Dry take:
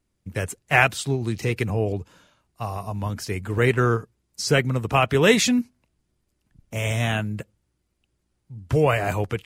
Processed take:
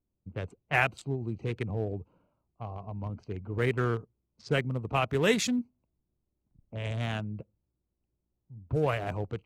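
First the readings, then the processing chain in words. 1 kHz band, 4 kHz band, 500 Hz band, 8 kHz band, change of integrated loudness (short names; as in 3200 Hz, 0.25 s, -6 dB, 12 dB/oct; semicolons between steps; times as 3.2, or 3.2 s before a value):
-9.0 dB, -10.0 dB, -8.5 dB, -11.5 dB, -8.5 dB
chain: Wiener smoothing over 25 samples; low-pass opened by the level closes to 1900 Hz, open at -18.5 dBFS; gain -8 dB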